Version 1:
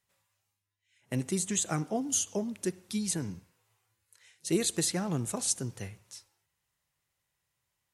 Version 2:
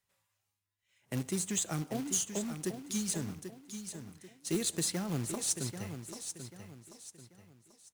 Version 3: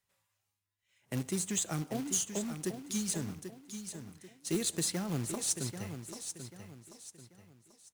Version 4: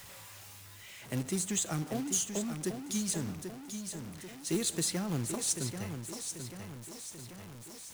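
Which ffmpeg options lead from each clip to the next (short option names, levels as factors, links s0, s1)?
-filter_complex "[0:a]acrossover=split=340|3000[s0][s1][s2];[s1]acompressor=threshold=0.0141:ratio=3[s3];[s0][s3][s2]amix=inputs=3:normalize=0,acrusher=bits=3:mode=log:mix=0:aa=0.000001,aecho=1:1:788|1576|2364|3152:0.355|0.128|0.046|0.0166,volume=0.708"
-af anull
-af "aeval=exprs='val(0)+0.5*0.00631*sgn(val(0))':c=same"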